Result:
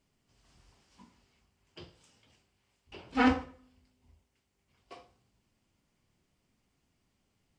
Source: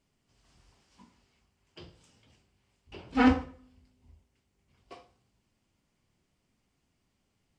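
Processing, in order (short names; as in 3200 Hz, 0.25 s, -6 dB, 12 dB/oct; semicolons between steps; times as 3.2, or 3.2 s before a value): 1.84–4.96 low shelf 340 Hz -6 dB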